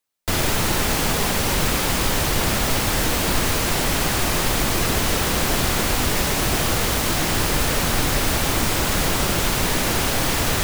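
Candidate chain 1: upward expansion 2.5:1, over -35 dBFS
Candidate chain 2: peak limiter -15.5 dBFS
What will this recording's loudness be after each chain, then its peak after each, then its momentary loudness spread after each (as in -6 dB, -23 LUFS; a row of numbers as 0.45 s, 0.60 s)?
-25.5 LUFS, -24.5 LUFS; -9.0 dBFS, -15.5 dBFS; 1 LU, 1 LU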